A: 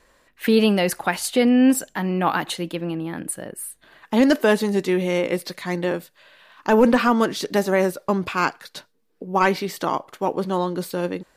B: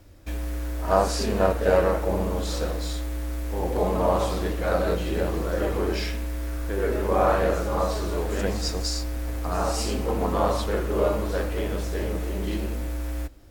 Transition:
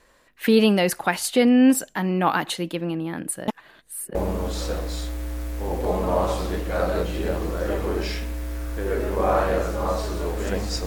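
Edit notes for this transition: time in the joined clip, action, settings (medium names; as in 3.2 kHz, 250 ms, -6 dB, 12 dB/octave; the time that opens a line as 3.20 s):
A
3.48–4.15 s: reverse
4.15 s: go over to B from 2.07 s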